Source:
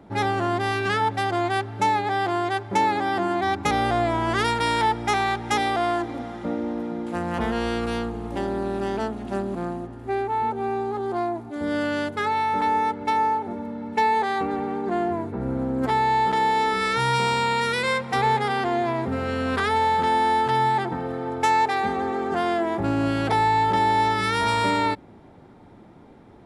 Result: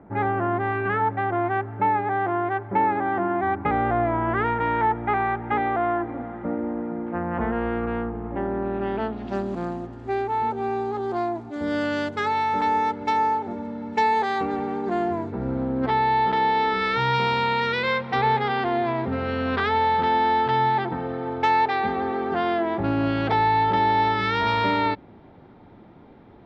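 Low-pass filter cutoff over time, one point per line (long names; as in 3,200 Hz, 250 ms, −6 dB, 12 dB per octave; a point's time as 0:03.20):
low-pass filter 24 dB per octave
0:08.44 2,000 Hz
0:09.04 3,300 Hz
0:09.44 7,200 Hz
0:15.21 7,200 Hz
0:15.69 4,200 Hz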